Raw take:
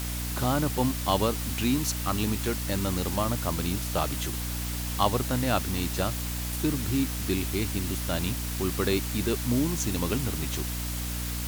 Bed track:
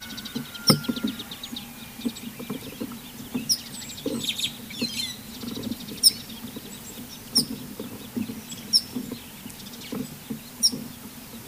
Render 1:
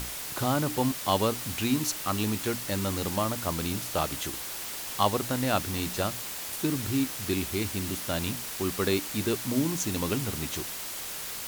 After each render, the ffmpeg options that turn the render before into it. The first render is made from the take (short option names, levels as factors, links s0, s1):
-af "bandreject=f=60:t=h:w=6,bandreject=f=120:t=h:w=6,bandreject=f=180:t=h:w=6,bandreject=f=240:t=h:w=6,bandreject=f=300:t=h:w=6"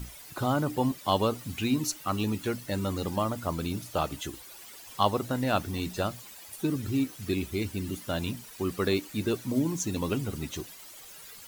-af "afftdn=nr=14:nf=-37"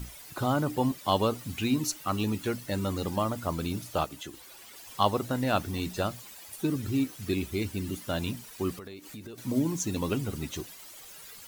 -filter_complex "[0:a]asettb=1/sr,asplit=3[s0][s1][s2];[s0]atrim=end=4.044[s3];[s1]atrim=start=4.04:end=4.76,asetpts=PTS-STARTPTS,afade=t=in:d=0.004:c=qsin,afade=t=out:st=0.716:d=0.004:c=qsin,acrossover=split=140|5200[s4][s5][s6];[s4]acompressor=threshold=0.00158:ratio=4[s7];[s5]acompressor=threshold=0.0112:ratio=4[s8];[s6]acompressor=threshold=0.00355:ratio=4[s9];[s7][s8][s9]amix=inputs=3:normalize=0[s10];[s2]atrim=start=4.756[s11];[s3][s10]acrossfade=d=0.004:c1=hsin:c2=qsin[s12];[s12][s11]acrossfade=d=0.004:c1=qsin:c2=hsin,asettb=1/sr,asplit=3[s13][s14][s15];[s13]atrim=end=8.774[s16];[s14]atrim=start=8.77:end=9.38,asetpts=PTS-STARTPTS,afade=t=in:d=0.004:c=qsin,afade=t=out:st=0.606:d=0.004:c=qsin,acompressor=threshold=0.0112:ratio=16:attack=3.2:release=140:knee=1:detection=peak[s17];[s15]atrim=start=9.376[s18];[s16][s17]acrossfade=d=0.004:c1=hsin:c2=qsin[s19];[s19][s18]acrossfade=d=0.004:c1=qsin:c2=hsin"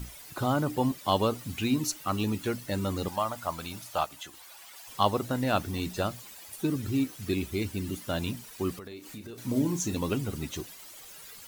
-filter_complex "[0:a]asettb=1/sr,asplit=3[s0][s1][s2];[s0]atrim=end=3.084[s3];[s1]atrim=start=3.08:end=4.88,asetpts=PTS-STARTPTS,afade=t=in:d=0.004:c=qsin,afade=t=out:st=1.796:d=0.004:c=qsin,lowshelf=f=540:t=q:w=1.5:g=-8.5[s4];[s2]atrim=start=4.876[s5];[s3][s4]acrossfade=d=0.004:c1=hsin:c2=qsin[s6];[s6][s5]acrossfade=d=0.004:c1=qsin:c2=hsin,asettb=1/sr,asplit=3[s7][s8][s9];[s7]atrim=end=8.884[s10];[s8]atrim=start=8.88:end=9.95,asetpts=PTS-STARTPTS,afade=t=in:d=0.004:c=qsin,afade=t=out:st=1.066:d=0.004:c=qsin,asplit=2[s11][s12];[s12]adelay=34,volume=0.355[s13];[s11][s13]amix=inputs=2:normalize=0,atrim=end_sample=47187[s14];[s9]atrim=start=9.946[s15];[s10][s14]acrossfade=d=0.004:c1=hsin:c2=qsin[s16];[s16][s15]acrossfade=d=0.004:c1=qsin:c2=hsin"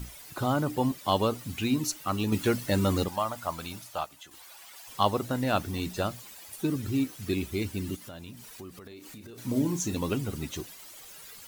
-filter_complex "[0:a]asettb=1/sr,asplit=3[s0][s1][s2];[s0]atrim=end=2.324[s3];[s1]atrim=start=2.32:end=3.04,asetpts=PTS-STARTPTS,afade=t=in:d=0.004:c=qsin,afade=t=out:st=0.716:d=0.004:c=qsin,acontrast=31[s4];[s2]atrim=start=3.036[s5];[s3][s4]acrossfade=d=0.004:c1=hsin:c2=qsin[s6];[s6][s5]acrossfade=d=0.004:c1=qsin:c2=hsin,asplit=3[s7][s8][s9];[s7]afade=t=out:st=7.95:d=0.02[s10];[s8]acompressor=threshold=0.00794:ratio=4:attack=3.2:release=140:knee=1:detection=peak,afade=t=in:st=7.95:d=0.02,afade=t=out:st=9.37:d=0.02[s11];[s9]afade=t=in:st=9.37:d=0.02[s12];[s10][s11][s12]amix=inputs=3:normalize=0,asplit=2[s13][s14];[s13]atrim=end=4.31,asetpts=PTS-STARTPTS,afade=t=out:st=3.72:d=0.59:c=qua:silence=0.473151[s15];[s14]atrim=start=4.31,asetpts=PTS-STARTPTS,afade=t=in:d=0.004:c=hsin:silence=0.473151[s16];[s15][s16]concat=n=2:v=0:a=1"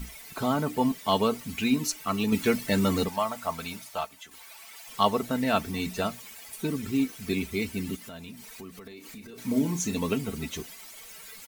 -af "equalizer=f=2200:t=o:w=0.36:g=6,aecho=1:1:4.5:0.6"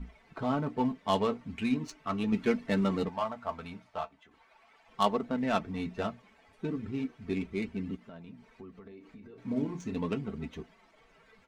-af "adynamicsmooth=sensitivity=2:basefreq=1500,flanger=delay=3.9:depth=7.7:regen=-51:speed=0.38:shape=triangular"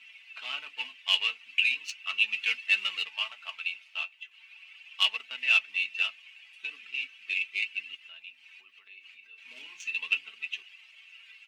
-filter_complex "[0:a]asplit=2[s0][s1];[s1]asoftclip=type=hard:threshold=0.0668,volume=0.631[s2];[s0][s2]amix=inputs=2:normalize=0,highpass=f=2700:t=q:w=11"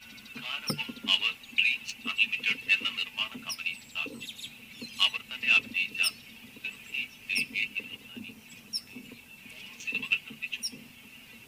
-filter_complex "[1:a]volume=0.188[s0];[0:a][s0]amix=inputs=2:normalize=0"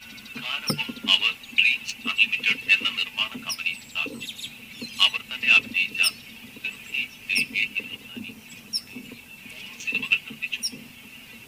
-af "volume=2"